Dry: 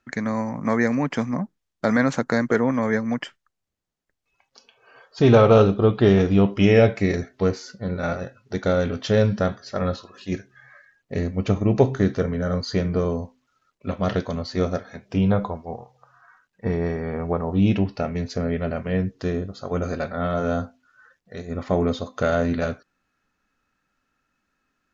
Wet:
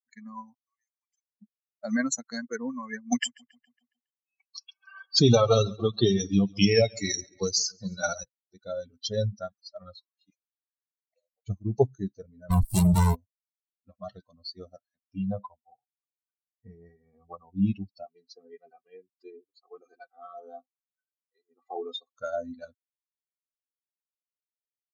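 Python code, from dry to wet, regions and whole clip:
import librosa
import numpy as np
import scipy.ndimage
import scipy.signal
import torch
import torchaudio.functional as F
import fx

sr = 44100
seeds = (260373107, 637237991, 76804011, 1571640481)

y = fx.chain(x, sr, fx.differentiator(),
    fx.level_steps(step_db=9), at=(0.54, 1.42))
y = fx.chain(y, sr, fx.high_shelf(hz=3400.0, db=9.0),
    fx.echo_feedback(ms=138, feedback_pct=55, wet_db=-11),
    fx.band_squash(depth_pct=70), at=(3.12, 8.24))
y = fx.chain(y, sr, fx.env_flanger(rest_ms=7.6, full_db=-24.5),
    fx.cheby1_highpass(hz=490.0, order=6), at=(10.3, 11.47))
y = fx.chain(y, sr, fx.leveller(passes=5),
    fx.running_max(window=33), at=(12.5, 13.15))
y = fx.chain(y, sr, fx.cheby1_highpass(hz=160.0, order=3),
    fx.high_shelf(hz=4400.0, db=-6.0),
    fx.comb(ms=2.5, depth=0.75), at=(18.06, 22.18))
y = fx.bin_expand(y, sr, power=3.0)
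y = fx.env_lowpass(y, sr, base_hz=2500.0, full_db=-24.0)
y = fx.high_shelf_res(y, sr, hz=3500.0, db=13.5, q=1.5)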